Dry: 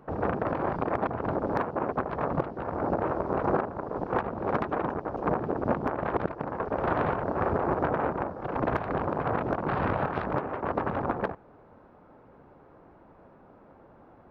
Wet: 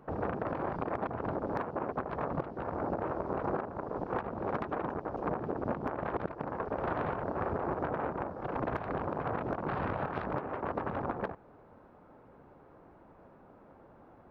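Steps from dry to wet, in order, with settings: compressor 2:1, threshold -30 dBFS, peak gain reduction 6 dB; gain -2.5 dB

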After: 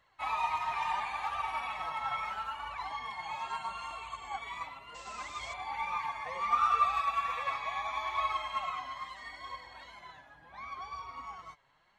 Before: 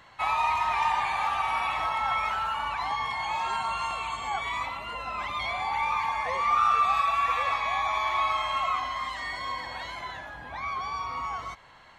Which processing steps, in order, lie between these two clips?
painted sound noise, 4.94–5.54, 290–8200 Hz -42 dBFS; flange 0.73 Hz, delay 1.5 ms, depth 6.1 ms, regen +34%; upward expander 1.5:1, over -47 dBFS

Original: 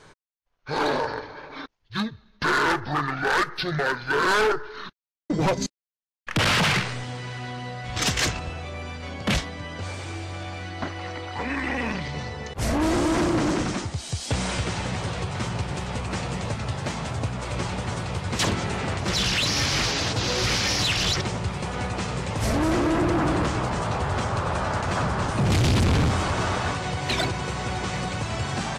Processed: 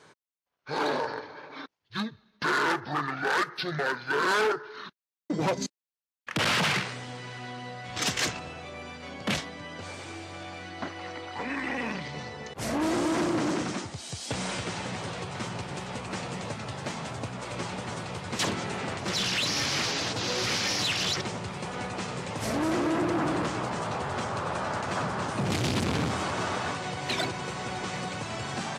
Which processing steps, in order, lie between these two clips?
HPF 150 Hz 12 dB/oct; gain -4 dB

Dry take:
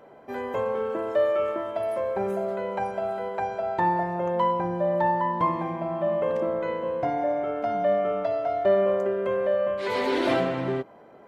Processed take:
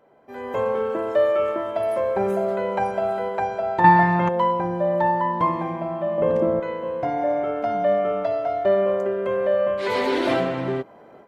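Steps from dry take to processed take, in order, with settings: 6.18–6.6 low shelf 490 Hz +11.5 dB; AGC gain up to 14 dB; 3.84–4.29 graphic EQ 125/250/500/1000/2000/4000 Hz +10/+10/-8/+8/+10/+10 dB; gain -8 dB

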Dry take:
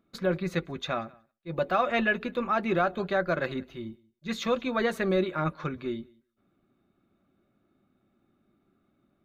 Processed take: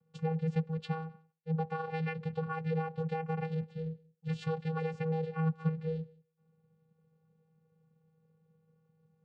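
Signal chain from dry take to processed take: compressor, threshold -28 dBFS, peak gain reduction 8.5 dB; vocoder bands 8, square 160 Hz

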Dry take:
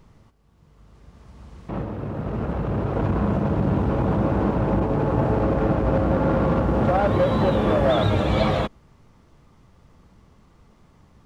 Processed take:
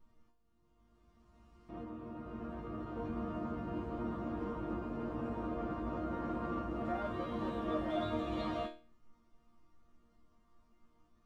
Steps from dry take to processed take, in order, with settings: low shelf 490 Hz +5 dB; resonator bank A#3 sus4, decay 0.36 s; small resonant body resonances 1200/2900 Hz, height 10 dB, ringing for 45 ms

